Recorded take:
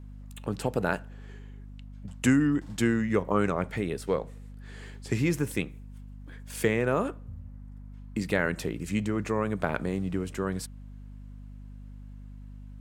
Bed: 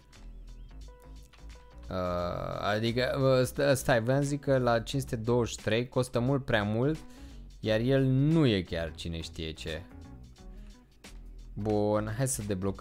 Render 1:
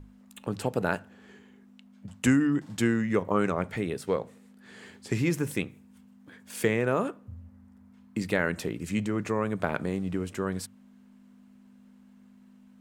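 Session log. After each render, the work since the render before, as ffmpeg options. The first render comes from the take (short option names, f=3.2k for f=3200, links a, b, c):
-af "bandreject=f=50:t=h:w=6,bandreject=f=100:t=h:w=6,bandreject=f=150:t=h:w=6"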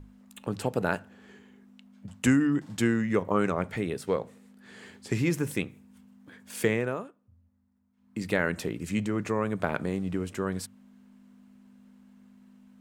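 -filter_complex "[0:a]asplit=3[a][b][c];[a]atrim=end=7.08,asetpts=PTS-STARTPTS,afade=t=out:st=6.73:d=0.35:silence=0.133352[d];[b]atrim=start=7.08:end=7.96,asetpts=PTS-STARTPTS,volume=-17.5dB[e];[c]atrim=start=7.96,asetpts=PTS-STARTPTS,afade=t=in:d=0.35:silence=0.133352[f];[d][e][f]concat=n=3:v=0:a=1"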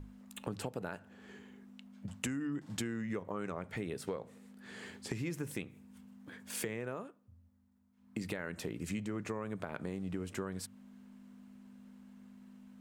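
-af "alimiter=limit=-18dB:level=0:latency=1:release=491,acompressor=threshold=-36dB:ratio=4"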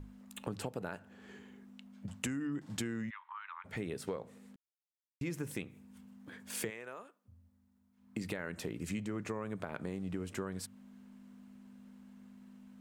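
-filter_complex "[0:a]asplit=3[a][b][c];[a]afade=t=out:st=3.09:d=0.02[d];[b]asuperpass=centerf=1900:order=20:qfactor=0.61,afade=t=in:st=3.09:d=0.02,afade=t=out:st=3.64:d=0.02[e];[c]afade=t=in:st=3.64:d=0.02[f];[d][e][f]amix=inputs=3:normalize=0,asplit=3[g][h][i];[g]afade=t=out:st=6.69:d=0.02[j];[h]highpass=f=1k:p=1,afade=t=in:st=6.69:d=0.02,afade=t=out:st=7.24:d=0.02[k];[i]afade=t=in:st=7.24:d=0.02[l];[j][k][l]amix=inputs=3:normalize=0,asplit=3[m][n][o];[m]atrim=end=4.56,asetpts=PTS-STARTPTS,afade=t=out:st=4.556:d=0.004:c=hsin[p];[n]atrim=start=4.56:end=5.21,asetpts=PTS-STARTPTS,volume=0[q];[o]atrim=start=5.21,asetpts=PTS-STARTPTS,afade=t=in:d=0.004:c=hsin[r];[p][q][r]concat=n=3:v=0:a=1"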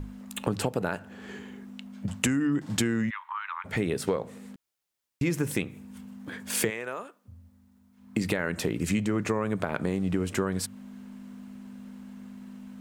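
-af "volume=11.5dB"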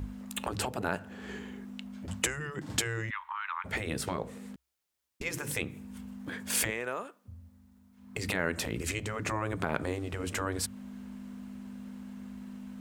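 -af "afftfilt=real='re*lt(hypot(re,im),0.2)':imag='im*lt(hypot(re,im),0.2)':win_size=1024:overlap=0.75,equalizer=f=63:w=6:g=14"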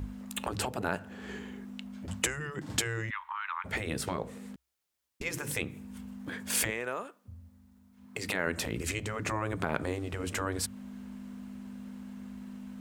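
-filter_complex "[0:a]asettb=1/sr,asplit=3[a][b][c];[a]atrim=end=8.064[d];[b]atrim=start=8.06:end=8.47,asetpts=PTS-STARTPTS,afade=t=in:d=0.004:c=qsin,afade=t=out:st=0.406:d=0.004:c=qsin,highpass=f=210:p=1[e];[c]atrim=start=8.466[f];[d][e]acrossfade=d=0.004:c1=hsin:c2=qsin[g];[g][f]acrossfade=d=0.004:c1=qsin:c2=hsin"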